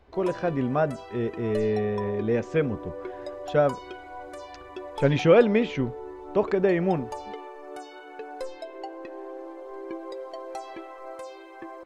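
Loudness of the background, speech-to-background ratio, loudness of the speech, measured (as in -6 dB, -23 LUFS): -39.0 LUFS, 14.0 dB, -25.0 LUFS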